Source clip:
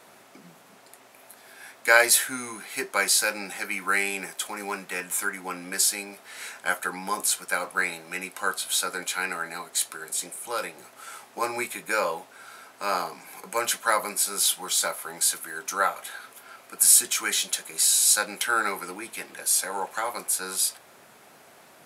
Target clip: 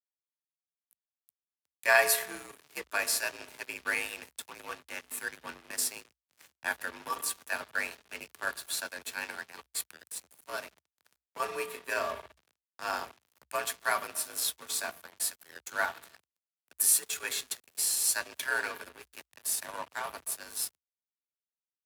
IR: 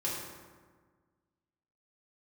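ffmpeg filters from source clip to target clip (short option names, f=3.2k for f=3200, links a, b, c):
-filter_complex "[0:a]asplit=2[a][b];[1:a]atrim=start_sample=2205,lowpass=4.9k[c];[b][c]afir=irnorm=-1:irlink=0,volume=-11.5dB[d];[a][d]amix=inputs=2:normalize=0,aeval=exprs='sgn(val(0))*max(abs(val(0))-0.0237,0)':c=same,afreqshift=54,asetrate=46722,aresample=44100,atempo=0.943874,volume=-6.5dB"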